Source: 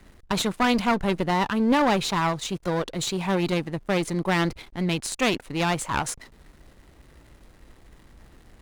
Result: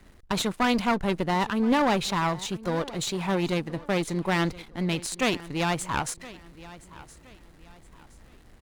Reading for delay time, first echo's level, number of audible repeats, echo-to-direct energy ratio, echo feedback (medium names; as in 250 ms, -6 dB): 1019 ms, -19.0 dB, 2, -18.5 dB, 34%